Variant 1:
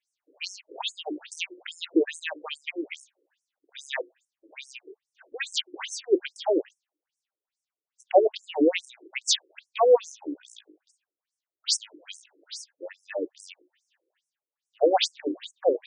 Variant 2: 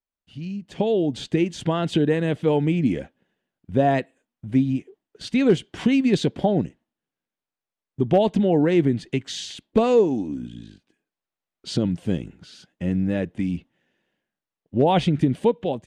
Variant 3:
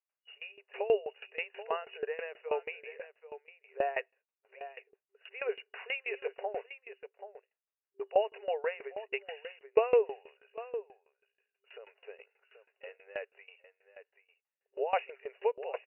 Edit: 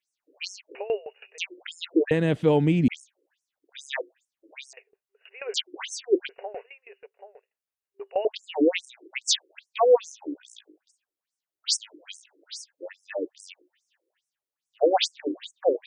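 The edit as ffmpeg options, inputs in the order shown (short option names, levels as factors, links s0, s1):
-filter_complex "[2:a]asplit=3[s0][s1][s2];[0:a]asplit=5[s3][s4][s5][s6][s7];[s3]atrim=end=0.752[s8];[s0]atrim=start=0.748:end=1.382[s9];[s4]atrim=start=1.378:end=2.112[s10];[1:a]atrim=start=2.108:end=2.882[s11];[s5]atrim=start=2.878:end=4.732[s12];[s1]atrim=start=4.728:end=5.542[s13];[s6]atrim=start=5.538:end=6.292[s14];[s2]atrim=start=6.288:end=8.252[s15];[s7]atrim=start=8.248[s16];[s8][s9]acrossfade=d=0.004:c1=hsin:c2=hsin[s17];[s17][s10]acrossfade=d=0.004:c1=hsin:c2=hsin[s18];[s18][s11]acrossfade=d=0.004:c1=hsin:c2=hsin[s19];[s19][s12]acrossfade=d=0.004:c1=hsin:c2=hsin[s20];[s20][s13]acrossfade=d=0.004:c1=hsin:c2=hsin[s21];[s21][s14]acrossfade=d=0.004:c1=hsin:c2=hsin[s22];[s22][s15]acrossfade=d=0.004:c1=hsin:c2=hsin[s23];[s23][s16]acrossfade=d=0.004:c1=hsin:c2=hsin"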